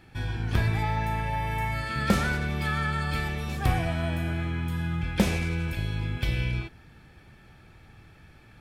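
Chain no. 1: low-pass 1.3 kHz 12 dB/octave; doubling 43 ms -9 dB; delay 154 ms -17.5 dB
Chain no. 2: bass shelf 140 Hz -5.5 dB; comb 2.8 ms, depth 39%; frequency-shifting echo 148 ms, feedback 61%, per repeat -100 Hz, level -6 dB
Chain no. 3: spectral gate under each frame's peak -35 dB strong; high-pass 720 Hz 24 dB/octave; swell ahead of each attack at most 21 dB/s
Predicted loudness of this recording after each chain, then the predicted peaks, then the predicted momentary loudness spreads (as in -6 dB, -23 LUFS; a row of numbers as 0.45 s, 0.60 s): -29.5 LUFS, -29.0 LUFS, -32.5 LUFS; -10.5 dBFS, -10.5 dBFS, -16.5 dBFS; 6 LU, 8 LU, 9 LU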